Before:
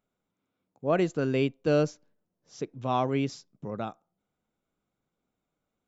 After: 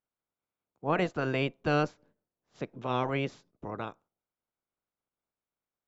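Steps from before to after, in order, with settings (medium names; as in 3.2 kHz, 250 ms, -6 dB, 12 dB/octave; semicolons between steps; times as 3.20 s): spectral peaks clipped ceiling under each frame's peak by 18 dB; low-pass 1.5 kHz 6 dB/octave; gate -58 dBFS, range -8 dB; trim -1.5 dB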